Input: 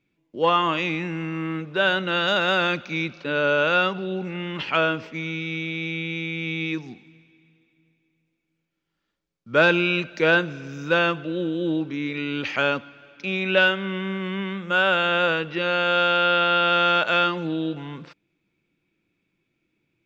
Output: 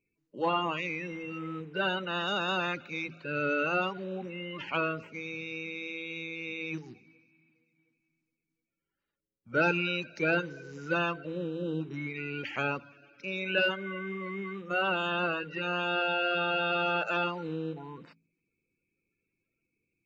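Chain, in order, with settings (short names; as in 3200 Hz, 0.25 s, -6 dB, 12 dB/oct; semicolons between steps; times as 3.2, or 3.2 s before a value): bin magnitudes rounded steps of 30 dB; notch 3400 Hz, Q 5.7; de-hum 54.37 Hz, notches 5; gain -8 dB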